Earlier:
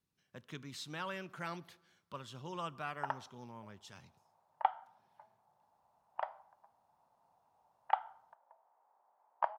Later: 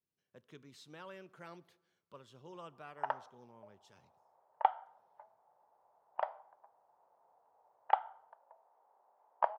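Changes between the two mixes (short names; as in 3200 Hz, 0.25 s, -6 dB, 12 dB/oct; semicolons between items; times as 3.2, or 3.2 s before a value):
speech -11.5 dB; master: add bell 450 Hz +8.5 dB 1.1 oct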